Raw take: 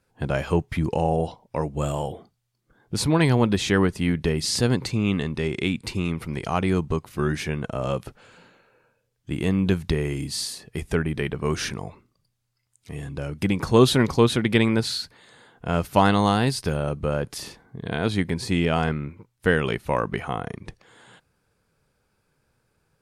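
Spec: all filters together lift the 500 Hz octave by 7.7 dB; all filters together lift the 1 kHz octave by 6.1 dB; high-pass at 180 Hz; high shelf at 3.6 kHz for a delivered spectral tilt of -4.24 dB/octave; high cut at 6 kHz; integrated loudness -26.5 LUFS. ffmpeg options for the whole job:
-af "highpass=180,lowpass=6000,equalizer=f=500:t=o:g=8.5,equalizer=f=1000:t=o:g=4.5,highshelf=f=3600:g=3,volume=0.501"

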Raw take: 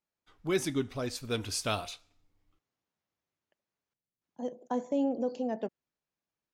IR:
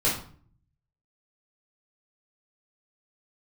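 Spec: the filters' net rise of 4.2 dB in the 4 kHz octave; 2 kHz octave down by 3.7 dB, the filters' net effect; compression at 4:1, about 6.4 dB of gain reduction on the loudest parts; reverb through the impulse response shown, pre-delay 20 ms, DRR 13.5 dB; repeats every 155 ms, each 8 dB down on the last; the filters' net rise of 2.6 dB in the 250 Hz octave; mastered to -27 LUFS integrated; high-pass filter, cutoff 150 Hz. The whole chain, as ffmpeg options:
-filter_complex "[0:a]highpass=150,equalizer=f=250:t=o:g=3.5,equalizer=f=2000:t=o:g=-7.5,equalizer=f=4000:t=o:g=7,acompressor=threshold=0.0316:ratio=4,aecho=1:1:155|310|465|620|775:0.398|0.159|0.0637|0.0255|0.0102,asplit=2[s0][s1];[1:a]atrim=start_sample=2205,adelay=20[s2];[s1][s2]afir=irnorm=-1:irlink=0,volume=0.0531[s3];[s0][s3]amix=inputs=2:normalize=0,volume=2.51"

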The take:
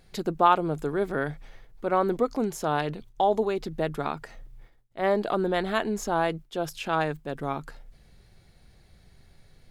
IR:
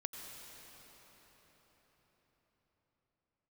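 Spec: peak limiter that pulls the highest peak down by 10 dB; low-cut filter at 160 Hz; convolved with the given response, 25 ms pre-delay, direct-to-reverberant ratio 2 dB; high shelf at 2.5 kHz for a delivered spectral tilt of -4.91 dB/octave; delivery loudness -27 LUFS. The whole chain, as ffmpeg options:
-filter_complex "[0:a]highpass=160,highshelf=f=2500:g=3.5,alimiter=limit=0.158:level=0:latency=1,asplit=2[s0][s1];[1:a]atrim=start_sample=2205,adelay=25[s2];[s1][s2]afir=irnorm=-1:irlink=0,volume=0.891[s3];[s0][s3]amix=inputs=2:normalize=0,volume=1.12"

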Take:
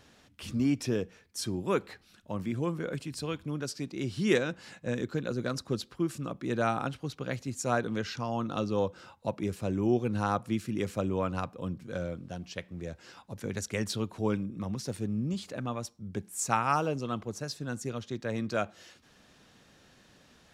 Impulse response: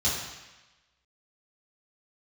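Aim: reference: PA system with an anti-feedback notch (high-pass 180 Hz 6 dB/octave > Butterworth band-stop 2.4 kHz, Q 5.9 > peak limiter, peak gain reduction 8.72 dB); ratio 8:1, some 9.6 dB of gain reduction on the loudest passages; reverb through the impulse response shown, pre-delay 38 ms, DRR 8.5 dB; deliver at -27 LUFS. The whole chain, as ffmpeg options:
-filter_complex "[0:a]acompressor=threshold=0.0316:ratio=8,asplit=2[s0][s1];[1:a]atrim=start_sample=2205,adelay=38[s2];[s1][s2]afir=irnorm=-1:irlink=0,volume=0.112[s3];[s0][s3]amix=inputs=2:normalize=0,highpass=f=180:p=1,asuperstop=centerf=2400:order=8:qfactor=5.9,volume=4.22,alimiter=limit=0.158:level=0:latency=1"

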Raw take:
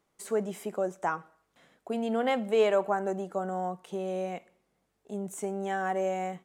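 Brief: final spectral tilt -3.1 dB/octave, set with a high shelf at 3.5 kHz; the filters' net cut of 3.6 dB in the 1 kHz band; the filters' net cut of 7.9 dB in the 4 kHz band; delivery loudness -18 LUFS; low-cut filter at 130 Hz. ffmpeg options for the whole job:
-af "highpass=130,equalizer=f=1000:t=o:g=-4.5,highshelf=f=3500:g=-7,equalizer=f=4000:t=o:g=-7,volume=5.31"

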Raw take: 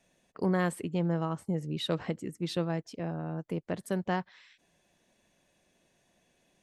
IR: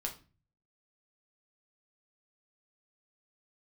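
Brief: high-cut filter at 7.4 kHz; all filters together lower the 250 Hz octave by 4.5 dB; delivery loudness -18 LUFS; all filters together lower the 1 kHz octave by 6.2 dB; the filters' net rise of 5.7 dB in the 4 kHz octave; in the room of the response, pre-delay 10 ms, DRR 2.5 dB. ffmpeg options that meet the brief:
-filter_complex "[0:a]lowpass=7400,equalizer=f=250:t=o:g=-8,equalizer=f=1000:t=o:g=-8.5,equalizer=f=4000:t=o:g=7,asplit=2[s0][s1];[1:a]atrim=start_sample=2205,adelay=10[s2];[s1][s2]afir=irnorm=-1:irlink=0,volume=0.708[s3];[s0][s3]amix=inputs=2:normalize=0,volume=5.96"

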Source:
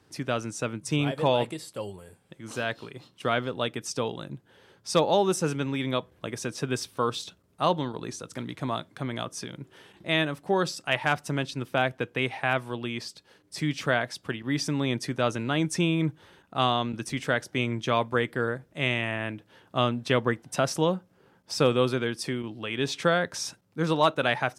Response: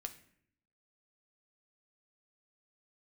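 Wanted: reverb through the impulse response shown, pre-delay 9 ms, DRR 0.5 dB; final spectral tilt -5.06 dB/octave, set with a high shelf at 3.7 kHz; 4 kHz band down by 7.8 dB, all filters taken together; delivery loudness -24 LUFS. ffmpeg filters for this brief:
-filter_complex "[0:a]highshelf=f=3700:g=-7,equalizer=f=4000:t=o:g=-6,asplit=2[s0][s1];[1:a]atrim=start_sample=2205,adelay=9[s2];[s1][s2]afir=irnorm=-1:irlink=0,volume=1.33[s3];[s0][s3]amix=inputs=2:normalize=0,volume=1.41"

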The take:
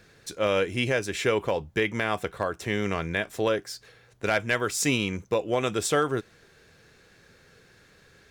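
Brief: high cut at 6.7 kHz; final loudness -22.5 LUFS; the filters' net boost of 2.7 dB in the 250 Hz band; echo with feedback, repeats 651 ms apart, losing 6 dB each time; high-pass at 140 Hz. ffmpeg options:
-af "highpass=140,lowpass=6700,equalizer=f=250:t=o:g=4,aecho=1:1:651|1302|1953|2604|3255|3906:0.501|0.251|0.125|0.0626|0.0313|0.0157,volume=1.5"

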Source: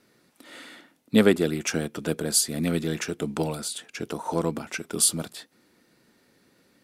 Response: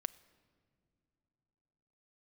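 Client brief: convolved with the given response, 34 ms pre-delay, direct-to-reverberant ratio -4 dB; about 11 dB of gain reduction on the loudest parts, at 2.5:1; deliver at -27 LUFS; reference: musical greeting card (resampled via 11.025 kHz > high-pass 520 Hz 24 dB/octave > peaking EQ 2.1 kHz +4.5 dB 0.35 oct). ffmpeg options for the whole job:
-filter_complex "[0:a]acompressor=threshold=0.0316:ratio=2.5,asplit=2[s0][s1];[1:a]atrim=start_sample=2205,adelay=34[s2];[s1][s2]afir=irnorm=-1:irlink=0,volume=1.88[s3];[s0][s3]amix=inputs=2:normalize=0,aresample=11025,aresample=44100,highpass=f=520:w=0.5412,highpass=f=520:w=1.3066,equalizer=f=2100:t=o:w=0.35:g=4.5,volume=2.11"

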